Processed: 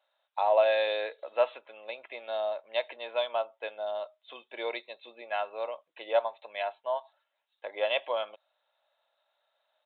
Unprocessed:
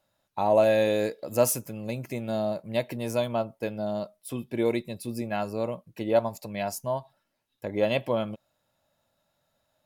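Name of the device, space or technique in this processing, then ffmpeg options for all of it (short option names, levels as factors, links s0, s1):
musical greeting card: -af "aresample=8000,aresample=44100,highpass=f=590:w=0.5412,highpass=f=590:w=1.3066,equalizer=f=3800:t=o:w=0.43:g=6"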